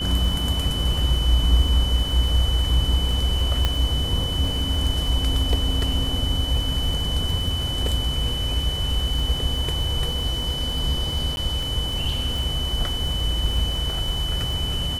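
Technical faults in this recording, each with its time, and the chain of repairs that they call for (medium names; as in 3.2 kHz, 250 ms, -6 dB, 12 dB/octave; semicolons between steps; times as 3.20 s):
crackle 33 per s -28 dBFS
whine 3 kHz -27 dBFS
3.65 s: pop -7 dBFS
11.36–11.37 s: dropout 11 ms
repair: de-click; band-stop 3 kHz, Q 30; interpolate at 11.36 s, 11 ms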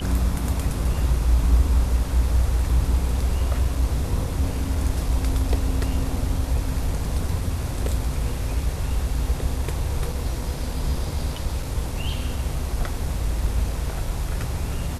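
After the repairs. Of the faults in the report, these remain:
3.65 s: pop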